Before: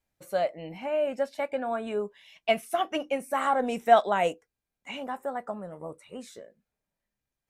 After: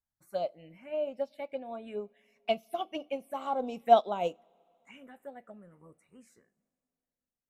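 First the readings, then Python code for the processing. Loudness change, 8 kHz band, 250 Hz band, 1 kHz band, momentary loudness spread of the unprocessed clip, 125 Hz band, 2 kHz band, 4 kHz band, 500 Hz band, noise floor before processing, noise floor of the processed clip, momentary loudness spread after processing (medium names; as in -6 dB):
-4.0 dB, under -10 dB, -6.5 dB, -4.0 dB, 20 LU, -7.5 dB, -13.5 dB, -6.0 dB, -4.5 dB, under -85 dBFS, under -85 dBFS, 24 LU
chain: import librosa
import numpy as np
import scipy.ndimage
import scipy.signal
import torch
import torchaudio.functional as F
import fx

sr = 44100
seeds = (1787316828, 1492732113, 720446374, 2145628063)

y = fx.env_phaser(x, sr, low_hz=470.0, high_hz=1800.0, full_db=-25.0)
y = fx.rev_double_slope(y, sr, seeds[0], early_s=0.3, late_s=3.4, knee_db=-18, drr_db=18.0)
y = fx.upward_expand(y, sr, threshold_db=-39.0, expansion=1.5)
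y = y * librosa.db_to_amplitude(1.0)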